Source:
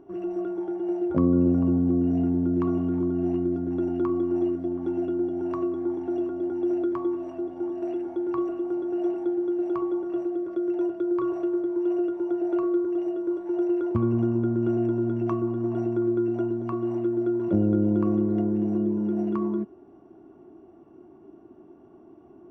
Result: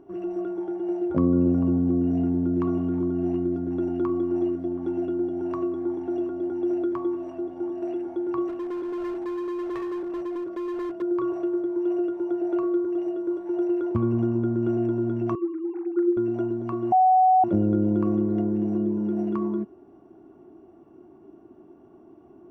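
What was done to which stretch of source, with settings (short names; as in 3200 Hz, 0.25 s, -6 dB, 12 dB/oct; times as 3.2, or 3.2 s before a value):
8.48–11.02 hard clip -28 dBFS
15.35–16.17 sine-wave speech
16.92–17.44 bleep 747 Hz -14 dBFS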